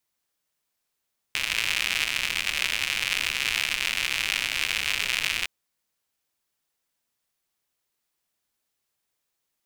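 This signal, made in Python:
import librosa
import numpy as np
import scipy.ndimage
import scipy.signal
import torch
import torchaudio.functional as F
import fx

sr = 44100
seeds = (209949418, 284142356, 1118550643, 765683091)

y = fx.rain(sr, seeds[0], length_s=4.11, drops_per_s=140.0, hz=2500.0, bed_db=-17)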